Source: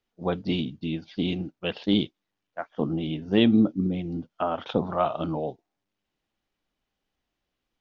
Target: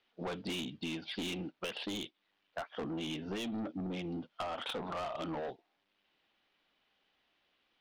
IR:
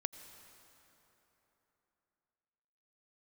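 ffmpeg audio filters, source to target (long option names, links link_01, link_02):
-af "lowpass=frequency=3600:width=0.5412,lowpass=frequency=3600:width=1.3066,aemphasis=mode=production:type=riaa,alimiter=limit=-18.5dB:level=0:latency=1:release=364,asoftclip=type=tanh:threshold=-34dB,acompressor=threshold=-44dB:ratio=6,volume=7dB"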